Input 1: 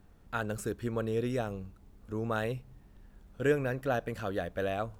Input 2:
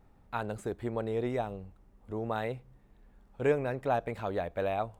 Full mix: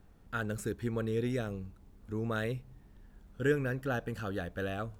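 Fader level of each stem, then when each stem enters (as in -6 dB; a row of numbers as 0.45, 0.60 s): -1.5, -9.5 dB; 0.00, 0.00 s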